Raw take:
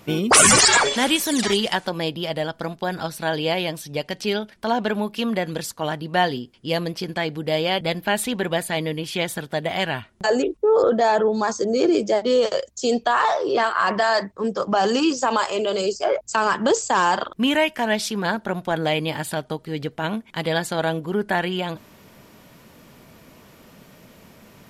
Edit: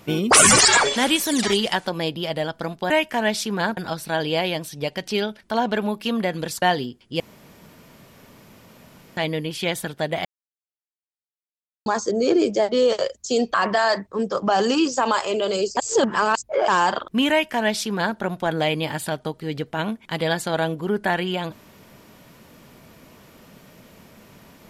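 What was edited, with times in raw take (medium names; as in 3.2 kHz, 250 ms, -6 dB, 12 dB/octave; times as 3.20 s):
5.75–6.15 s: delete
6.73–8.70 s: room tone
9.78–11.39 s: mute
13.07–13.79 s: delete
16.02–16.93 s: reverse
17.55–18.42 s: copy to 2.90 s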